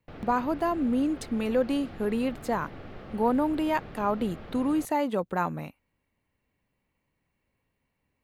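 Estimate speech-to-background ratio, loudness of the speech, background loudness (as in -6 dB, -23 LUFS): 16.0 dB, -28.5 LUFS, -44.5 LUFS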